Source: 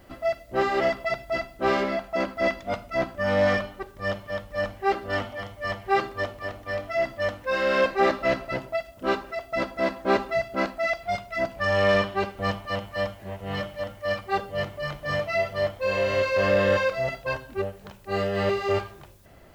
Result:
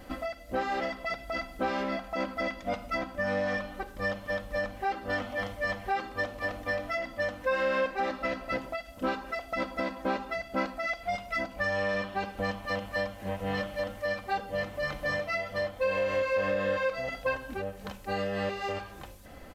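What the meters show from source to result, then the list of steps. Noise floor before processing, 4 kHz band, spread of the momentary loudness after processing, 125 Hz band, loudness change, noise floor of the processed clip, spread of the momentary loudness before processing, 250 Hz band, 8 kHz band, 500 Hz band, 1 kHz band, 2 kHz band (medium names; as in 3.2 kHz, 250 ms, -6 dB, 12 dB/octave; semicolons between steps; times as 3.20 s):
-49 dBFS, -6.0 dB, 7 LU, -7.5 dB, -5.5 dB, -47 dBFS, 10 LU, -4.5 dB, no reading, -6.5 dB, -5.0 dB, -3.5 dB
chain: resampled via 32 kHz; compression 6:1, threshold -32 dBFS, peak gain reduction 14.5 dB; comb 3.9 ms, depth 55%; trim +3 dB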